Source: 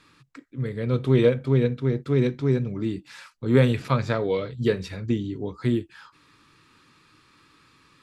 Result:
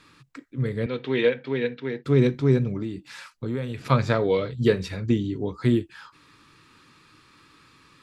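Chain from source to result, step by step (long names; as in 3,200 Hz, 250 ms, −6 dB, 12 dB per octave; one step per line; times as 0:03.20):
0:00.86–0:02.05: loudspeaker in its box 350–4,700 Hz, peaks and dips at 360 Hz −5 dB, 610 Hz −8 dB, 1,200 Hz −9 dB, 1,800 Hz +6 dB, 2,700 Hz +4 dB
0:02.76–0:03.86: downward compressor 5 to 1, threshold −30 dBFS, peak gain reduction 16 dB
level +2.5 dB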